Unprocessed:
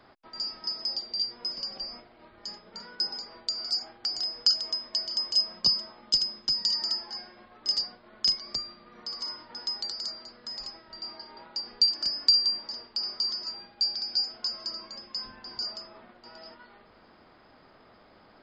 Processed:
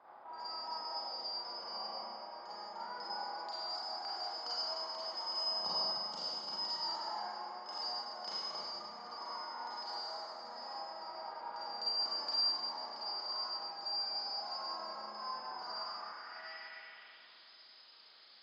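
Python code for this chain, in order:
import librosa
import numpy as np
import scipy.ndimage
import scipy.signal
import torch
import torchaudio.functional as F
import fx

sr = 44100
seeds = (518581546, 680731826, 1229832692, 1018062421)

y = fx.filter_sweep_bandpass(x, sr, from_hz=880.0, to_hz=4300.0, start_s=15.49, end_s=17.38, q=3.2)
y = fx.rev_schroeder(y, sr, rt60_s=2.2, comb_ms=33, drr_db=-9.0)
y = F.gain(torch.from_numpy(y), 2.5).numpy()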